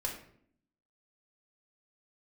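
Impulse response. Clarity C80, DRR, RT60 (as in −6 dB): 10.0 dB, −1.5 dB, 0.60 s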